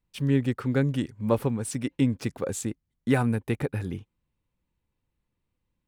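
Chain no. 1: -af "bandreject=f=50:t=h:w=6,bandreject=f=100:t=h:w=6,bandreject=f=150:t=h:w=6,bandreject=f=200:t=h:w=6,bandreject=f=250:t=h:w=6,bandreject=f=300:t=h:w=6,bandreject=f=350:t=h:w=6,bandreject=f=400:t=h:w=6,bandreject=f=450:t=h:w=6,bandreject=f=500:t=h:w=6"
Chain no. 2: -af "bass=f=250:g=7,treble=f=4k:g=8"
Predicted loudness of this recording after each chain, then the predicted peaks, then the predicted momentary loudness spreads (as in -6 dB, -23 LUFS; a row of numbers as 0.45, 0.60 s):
-28.5, -23.5 LUFS; -10.0, -6.0 dBFS; 10, 8 LU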